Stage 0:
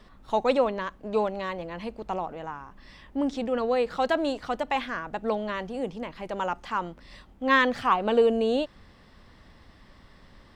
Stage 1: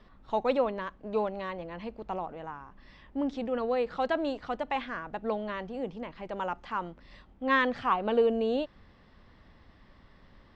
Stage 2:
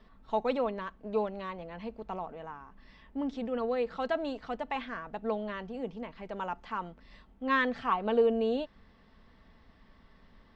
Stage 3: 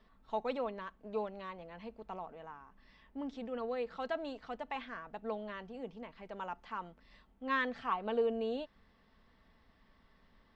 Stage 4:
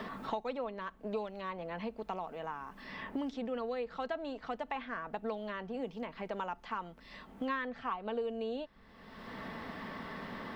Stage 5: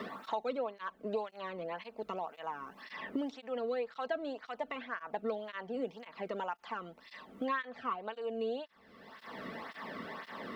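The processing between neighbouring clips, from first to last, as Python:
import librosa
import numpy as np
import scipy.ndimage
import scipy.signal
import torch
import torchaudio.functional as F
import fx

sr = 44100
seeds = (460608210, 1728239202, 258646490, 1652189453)

y1 = fx.air_absorb(x, sr, metres=130.0)
y1 = F.gain(torch.from_numpy(y1), -3.5).numpy()
y2 = y1 + 0.35 * np.pad(y1, (int(4.5 * sr / 1000.0), 0))[:len(y1)]
y2 = F.gain(torch.from_numpy(y2), -3.0).numpy()
y3 = fx.low_shelf(y2, sr, hz=450.0, db=-3.5)
y3 = F.gain(torch.from_numpy(y3), -5.0).numpy()
y4 = fx.band_squash(y3, sr, depth_pct=100)
y4 = F.gain(torch.from_numpy(y4), 1.0).numpy()
y5 = fx.flanger_cancel(y4, sr, hz=1.9, depth_ms=1.3)
y5 = F.gain(torch.from_numpy(y5), 3.0).numpy()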